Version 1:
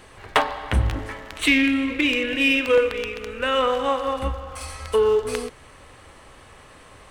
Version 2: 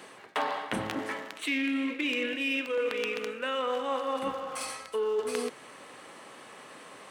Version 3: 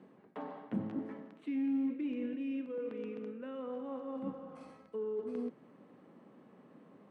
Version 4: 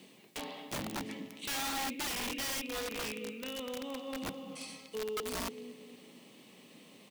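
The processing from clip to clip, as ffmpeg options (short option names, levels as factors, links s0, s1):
-af "highpass=f=180:w=0.5412,highpass=f=180:w=1.3066,areverse,acompressor=threshold=0.0398:ratio=6,areverse"
-filter_complex "[0:a]bandpass=f=200:t=q:w=2.1:csg=0,asplit=2[s0][s1];[s1]volume=59.6,asoftclip=hard,volume=0.0168,volume=0.251[s2];[s0][s2]amix=inputs=2:normalize=0,volume=1.12"
-filter_complex "[0:a]asplit=2[s0][s1];[s1]adelay=230,lowpass=f=2300:p=1,volume=0.282,asplit=2[s2][s3];[s3]adelay=230,lowpass=f=2300:p=1,volume=0.43,asplit=2[s4][s5];[s5]adelay=230,lowpass=f=2300:p=1,volume=0.43,asplit=2[s6][s7];[s7]adelay=230,lowpass=f=2300:p=1,volume=0.43[s8];[s0][s2][s4][s6][s8]amix=inputs=5:normalize=0,aexciter=amount=15.8:drive=4.3:freq=2300,aeval=exprs='(mod(39.8*val(0)+1,2)-1)/39.8':c=same"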